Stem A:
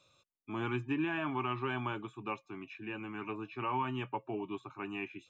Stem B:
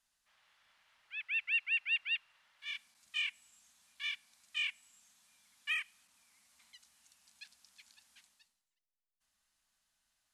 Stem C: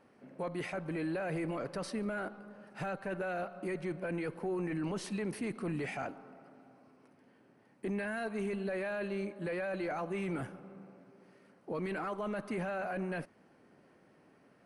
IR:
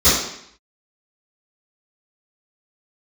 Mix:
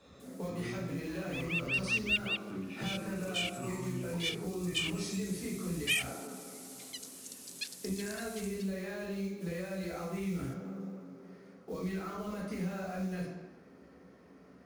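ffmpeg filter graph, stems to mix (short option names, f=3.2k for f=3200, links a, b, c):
-filter_complex "[0:a]lowshelf=f=400:g=10.5,acompressor=threshold=-38dB:ratio=6,volume=-1dB,asplit=3[a][b][c];[b]volume=-20.5dB[d];[1:a]crystalizer=i=8.5:c=0,adelay=200,volume=0.5dB[e];[2:a]acrusher=bits=6:mode=log:mix=0:aa=0.000001,volume=-3.5dB,asplit=2[f][g];[g]volume=-16.5dB[h];[c]apad=whole_len=464705[i];[e][i]sidechaincompress=threshold=-44dB:ratio=8:attack=16:release=370[j];[3:a]atrim=start_sample=2205[k];[d][h]amix=inputs=2:normalize=0[l];[l][k]afir=irnorm=-1:irlink=0[m];[a][j][f][m]amix=inputs=4:normalize=0,acrossover=split=130|3000[n][o][p];[o]acompressor=threshold=-38dB:ratio=6[q];[n][q][p]amix=inputs=3:normalize=0"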